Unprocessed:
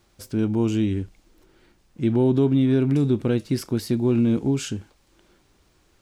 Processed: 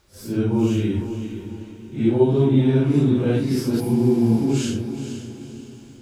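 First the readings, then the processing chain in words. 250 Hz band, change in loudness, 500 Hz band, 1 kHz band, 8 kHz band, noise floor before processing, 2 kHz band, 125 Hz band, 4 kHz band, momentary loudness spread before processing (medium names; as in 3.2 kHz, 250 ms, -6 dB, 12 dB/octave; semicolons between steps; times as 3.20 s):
+2.0 dB, +2.0 dB, +3.0 dB, +4.0 dB, +2.0 dB, -62 dBFS, +2.5 dB, +3.0 dB, +2.0 dB, 11 LU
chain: phase randomisation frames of 200 ms; echo that smears into a reverb 475 ms, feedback 43%, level -9.5 dB; spectral replace 3.82–4.43 s, 580–8400 Hz after; trim +2 dB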